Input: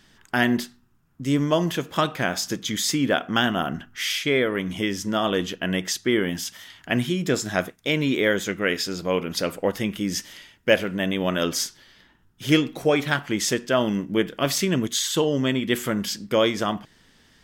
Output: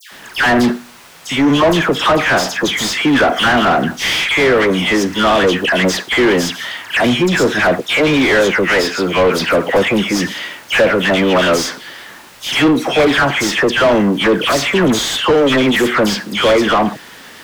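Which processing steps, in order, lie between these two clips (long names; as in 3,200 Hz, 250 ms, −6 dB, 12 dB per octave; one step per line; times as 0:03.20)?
background noise white −56 dBFS
all-pass dispersion lows, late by 120 ms, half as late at 1,700 Hz
mid-hump overdrive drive 28 dB, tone 1,700 Hz, clips at −6 dBFS
level +3 dB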